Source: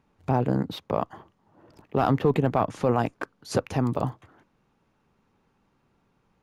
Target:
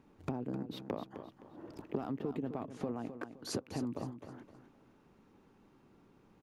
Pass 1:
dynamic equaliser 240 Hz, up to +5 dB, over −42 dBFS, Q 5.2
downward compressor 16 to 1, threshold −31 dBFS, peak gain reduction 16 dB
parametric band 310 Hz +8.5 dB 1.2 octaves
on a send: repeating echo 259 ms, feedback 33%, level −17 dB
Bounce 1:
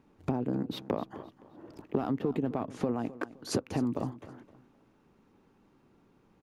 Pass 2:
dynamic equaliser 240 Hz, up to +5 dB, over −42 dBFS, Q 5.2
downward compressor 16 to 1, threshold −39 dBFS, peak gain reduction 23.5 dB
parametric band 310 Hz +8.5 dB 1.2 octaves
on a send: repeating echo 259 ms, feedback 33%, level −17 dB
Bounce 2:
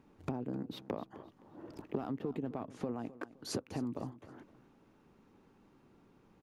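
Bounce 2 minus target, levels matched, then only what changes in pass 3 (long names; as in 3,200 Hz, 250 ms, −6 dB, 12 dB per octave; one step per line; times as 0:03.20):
echo-to-direct −6.5 dB
change: repeating echo 259 ms, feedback 33%, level −10.5 dB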